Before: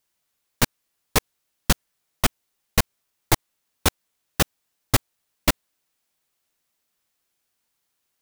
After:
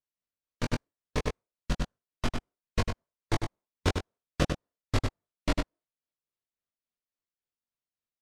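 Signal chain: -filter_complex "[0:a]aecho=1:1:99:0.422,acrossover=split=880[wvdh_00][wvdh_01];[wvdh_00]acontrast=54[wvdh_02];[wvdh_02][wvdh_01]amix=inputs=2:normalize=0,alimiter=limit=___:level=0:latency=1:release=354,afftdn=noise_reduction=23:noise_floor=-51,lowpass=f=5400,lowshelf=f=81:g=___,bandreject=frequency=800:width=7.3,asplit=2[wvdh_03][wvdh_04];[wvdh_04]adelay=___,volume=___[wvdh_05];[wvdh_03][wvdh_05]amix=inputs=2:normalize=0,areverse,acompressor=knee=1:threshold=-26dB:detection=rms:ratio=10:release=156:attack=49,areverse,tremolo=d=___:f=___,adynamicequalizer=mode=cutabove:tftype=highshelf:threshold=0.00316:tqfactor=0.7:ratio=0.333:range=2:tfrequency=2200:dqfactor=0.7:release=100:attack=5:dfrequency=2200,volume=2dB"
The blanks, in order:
-9.5dB, 3.5, 21, -8dB, 0.48, 3.6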